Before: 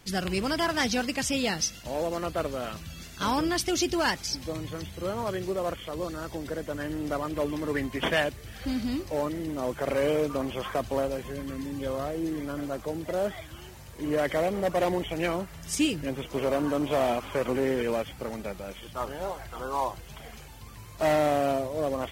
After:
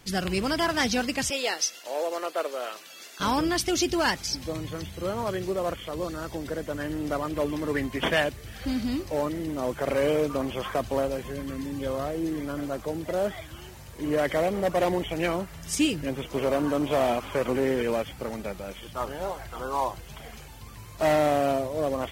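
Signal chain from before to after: 1.30–3.20 s: high-pass 380 Hz 24 dB/octave; trim +1.5 dB

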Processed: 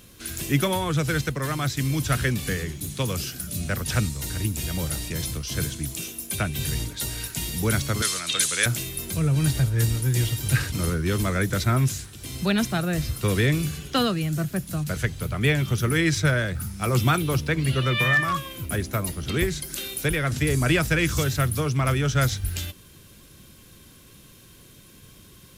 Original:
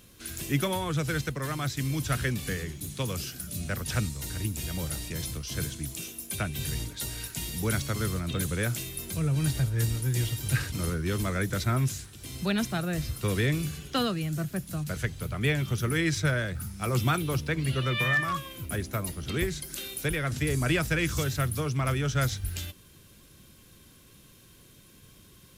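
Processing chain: 8.02–8.66 s: frequency weighting ITU-R 468; trim +5 dB

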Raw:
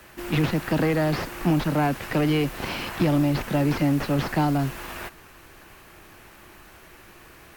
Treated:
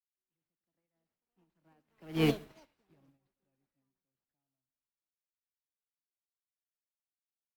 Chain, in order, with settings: Doppler pass-by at 2.28 s, 21 m/s, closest 1.7 m; delay 112 ms -21 dB; reverberation RT60 0.45 s, pre-delay 85 ms, DRR 11.5 dB; ever faster or slower copies 742 ms, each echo +6 st, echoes 2, each echo -6 dB; in parallel at 0 dB: volume shaper 104 bpm, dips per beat 2, -6 dB, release 229 ms; on the sum: upward expansion 2.5:1, over -42 dBFS; trim -8.5 dB

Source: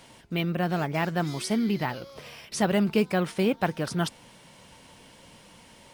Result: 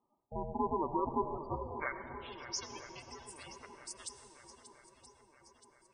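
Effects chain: band-pass sweep 600 Hz -> 7.9 kHz, 1.34–2.76 s; ring modulator 300 Hz; gate -59 dBFS, range -20 dB; shuffle delay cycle 974 ms, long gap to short 1.5:1, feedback 53%, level -13 dB; spectral gate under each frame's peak -10 dB strong; on a send at -10 dB: reverberation RT60 3.2 s, pre-delay 78 ms; on the sum: trim +3.5 dB

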